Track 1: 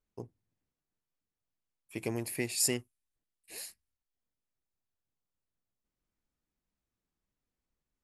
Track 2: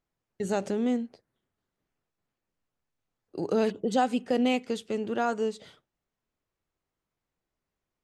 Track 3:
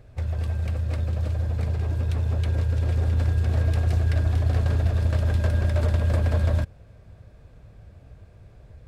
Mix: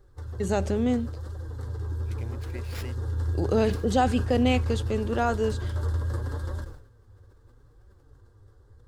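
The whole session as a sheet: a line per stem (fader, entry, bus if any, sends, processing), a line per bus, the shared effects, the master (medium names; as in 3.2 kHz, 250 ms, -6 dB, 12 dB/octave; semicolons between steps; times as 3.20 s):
-9.0 dB, 0.15 s, no send, sliding maximum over 5 samples
+2.0 dB, 0.00 s, no send, none
0.0 dB, 0.00 s, no send, static phaser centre 650 Hz, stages 6; flange 0.76 Hz, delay 4.9 ms, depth 6.1 ms, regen +33%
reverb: none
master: decay stretcher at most 86 dB/s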